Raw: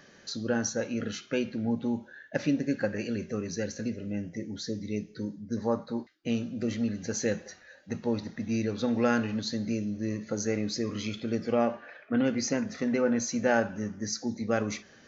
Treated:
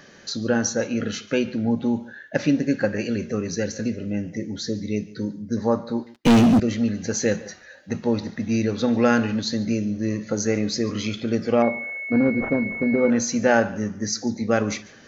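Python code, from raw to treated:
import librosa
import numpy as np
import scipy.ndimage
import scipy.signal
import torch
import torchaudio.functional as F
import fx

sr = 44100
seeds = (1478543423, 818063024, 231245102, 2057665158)

y = x + 10.0 ** (-21.0 / 20.0) * np.pad(x, (int(144 * sr / 1000.0), 0))[:len(x)]
y = fx.leveller(y, sr, passes=5, at=(6.14, 6.6))
y = fx.pwm(y, sr, carrier_hz=2200.0, at=(11.62, 13.1))
y = y * 10.0 ** (7.0 / 20.0)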